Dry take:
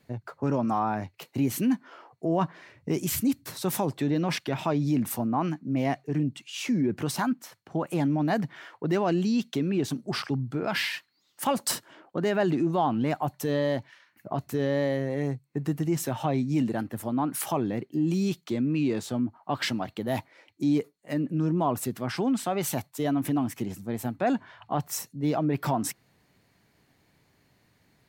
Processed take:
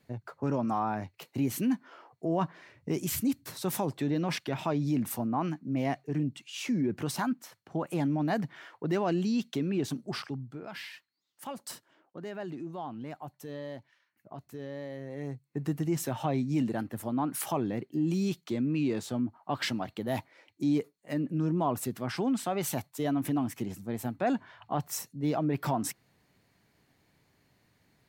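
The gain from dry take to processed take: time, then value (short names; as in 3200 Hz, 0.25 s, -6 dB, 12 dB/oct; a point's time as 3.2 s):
10.02 s -3.5 dB
10.7 s -14 dB
14.89 s -14 dB
15.63 s -3 dB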